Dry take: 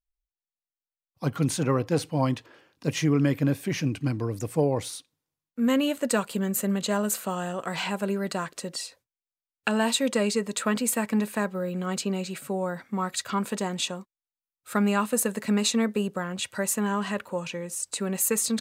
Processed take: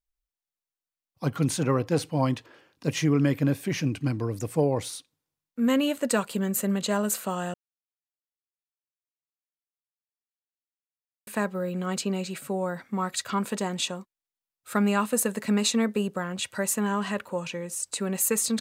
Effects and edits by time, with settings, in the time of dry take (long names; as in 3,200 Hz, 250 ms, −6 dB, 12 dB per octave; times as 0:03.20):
0:07.54–0:11.27: silence